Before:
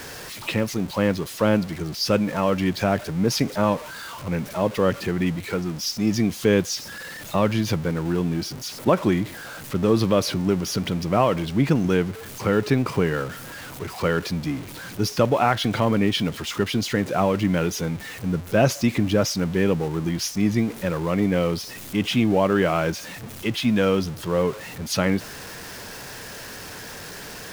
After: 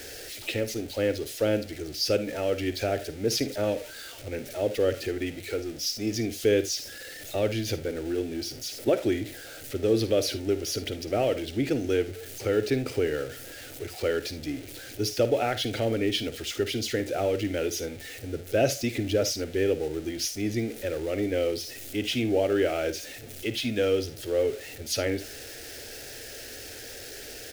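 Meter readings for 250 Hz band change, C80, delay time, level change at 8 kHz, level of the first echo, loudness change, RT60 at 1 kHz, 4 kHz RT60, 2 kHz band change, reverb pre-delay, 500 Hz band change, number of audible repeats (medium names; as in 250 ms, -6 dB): -8.0 dB, no reverb, 53 ms, -2.0 dB, -14.0 dB, -5.5 dB, no reverb, no reverb, -6.0 dB, no reverb, -2.5 dB, 1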